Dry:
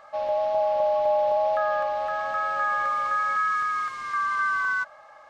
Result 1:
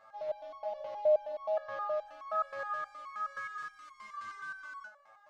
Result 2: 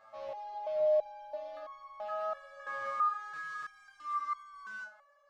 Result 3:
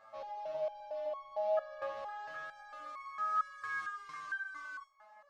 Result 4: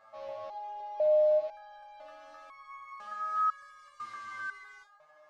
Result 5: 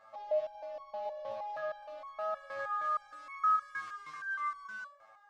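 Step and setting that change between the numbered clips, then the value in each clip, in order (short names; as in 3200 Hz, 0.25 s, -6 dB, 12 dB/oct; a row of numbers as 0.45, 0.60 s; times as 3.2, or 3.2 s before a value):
stepped resonator, rate: 9.5, 3, 4.4, 2, 6.4 Hz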